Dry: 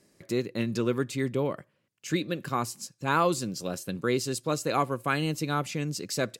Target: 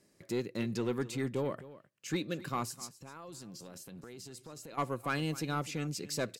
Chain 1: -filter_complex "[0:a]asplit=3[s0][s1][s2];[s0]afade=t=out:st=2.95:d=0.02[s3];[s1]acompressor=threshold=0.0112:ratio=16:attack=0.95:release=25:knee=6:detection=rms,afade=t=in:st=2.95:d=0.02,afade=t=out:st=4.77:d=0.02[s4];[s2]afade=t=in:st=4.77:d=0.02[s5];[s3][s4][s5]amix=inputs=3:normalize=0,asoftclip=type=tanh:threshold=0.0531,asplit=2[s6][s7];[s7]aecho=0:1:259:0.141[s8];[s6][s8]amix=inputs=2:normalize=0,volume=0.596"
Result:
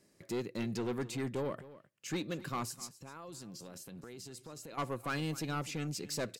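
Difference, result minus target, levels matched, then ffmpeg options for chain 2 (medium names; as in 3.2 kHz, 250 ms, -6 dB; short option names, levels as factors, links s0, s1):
saturation: distortion +7 dB
-filter_complex "[0:a]asplit=3[s0][s1][s2];[s0]afade=t=out:st=2.95:d=0.02[s3];[s1]acompressor=threshold=0.0112:ratio=16:attack=0.95:release=25:knee=6:detection=rms,afade=t=in:st=2.95:d=0.02,afade=t=out:st=4.77:d=0.02[s4];[s2]afade=t=in:st=4.77:d=0.02[s5];[s3][s4][s5]amix=inputs=3:normalize=0,asoftclip=type=tanh:threshold=0.112,asplit=2[s6][s7];[s7]aecho=0:1:259:0.141[s8];[s6][s8]amix=inputs=2:normalize=0,volume=0.596"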